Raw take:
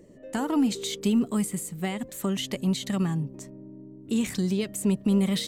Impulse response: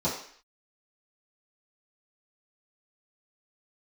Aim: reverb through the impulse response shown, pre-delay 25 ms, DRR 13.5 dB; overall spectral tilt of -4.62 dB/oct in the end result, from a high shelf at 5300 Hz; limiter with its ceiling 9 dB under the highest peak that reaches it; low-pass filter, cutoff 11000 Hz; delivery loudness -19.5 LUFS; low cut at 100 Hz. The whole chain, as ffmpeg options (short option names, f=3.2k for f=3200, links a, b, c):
-filter_complex "[0:a]highpass=100,lowpass=11k,highshelf=f=5.3k:g=5,alimiter=limit=-22.5dB:level=0:latency=1,asplit=2[a][b];[1:a]atrim=start_sample=2205,adelay=25[c];[b][c]afir=irnorm=-1:irlink=0,volume=-23.5dB[d];[a][d]amix=inputs=2:normalize=0,volume=11dB"